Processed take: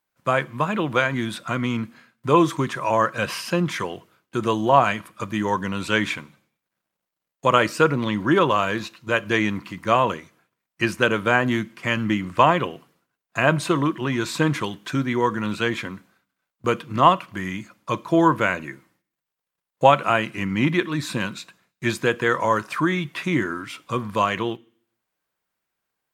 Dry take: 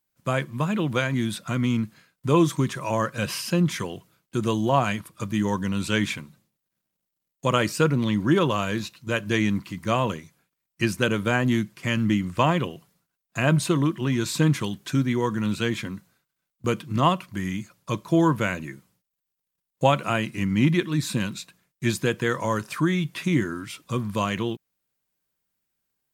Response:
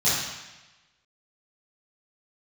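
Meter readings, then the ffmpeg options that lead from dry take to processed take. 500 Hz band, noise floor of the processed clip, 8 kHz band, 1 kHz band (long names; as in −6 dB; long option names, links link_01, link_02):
+4.0 dB, −84 dBFS, −2.5 dB, +7.0 dB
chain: -filter_complex "[0:a]equalizer=frequency=1100:width=0.33:gain=11.5,asplit=2[link_01][link_02];[1:a]atrim=start_sample=2205,asetrate=83790,aresample=44100[link_03];[link_02][link_03]afir=irnorm=-1:irlink=0,volume=-30dB[link_04];[link_01][link_04]amix=inputs=2:normalize=0,volume=-4.5dB"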